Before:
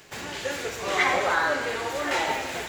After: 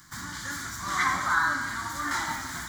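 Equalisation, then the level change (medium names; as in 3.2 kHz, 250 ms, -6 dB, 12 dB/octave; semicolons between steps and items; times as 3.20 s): high-order bell 580 Hz -14 dB 1.3 oct; static phaser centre 1.1 kHz, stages 4; +3.0 dB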